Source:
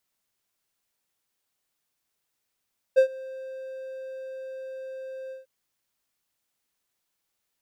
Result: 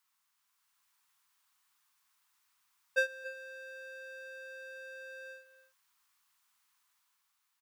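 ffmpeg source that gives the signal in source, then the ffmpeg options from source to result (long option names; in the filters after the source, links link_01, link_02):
-f lavfi -i "aevalsrc='0.316*(1-4*abs(mod(526*t+0.25,1)-0.5))':duration=2.497:sample_rate=44100,afade=type=in:duration=0.023,afade=type=out:start_time=0.023:duration=0.09:silence=0.0708,afade=type=out:start_time=2.35:duration=0.147"
-filter_complex "[0:a]lowshelf=frequency=760:width_type=q:width=3:gain=-11,dynaudnorm=framelen=120:gausssize=11:maxgain=4dB,asplit=2[link_01][link_02];[link_02]adelay=279.9,volume=-14dB,highshelf=frequency=4000:gain=-6.3[link_03];[link_01][link_03]amix=inputs=2:normalize=0"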